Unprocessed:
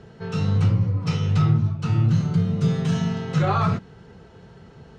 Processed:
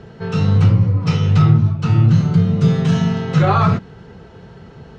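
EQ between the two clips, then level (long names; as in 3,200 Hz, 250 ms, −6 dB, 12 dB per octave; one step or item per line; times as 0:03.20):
high-frequency loss of the air 53 metres
+7.0 dB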